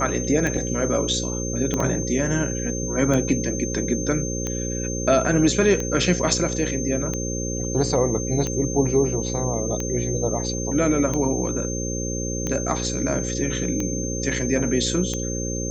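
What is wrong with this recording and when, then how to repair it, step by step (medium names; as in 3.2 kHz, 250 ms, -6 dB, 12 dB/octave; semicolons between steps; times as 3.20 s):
buzz 60 Hz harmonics 9 -28 dBFS
tick 45 rpm -13 dBFS
whine 6.3 kHz -30 dBFS
1.74 s: pop -11 dBFS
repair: de-click; band-stop 6.3 kHz, Q 30; de-hum 60 Hz, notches 9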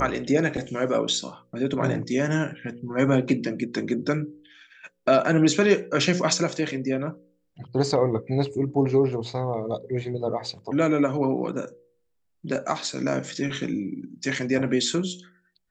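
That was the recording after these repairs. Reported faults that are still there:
1.74 s: pop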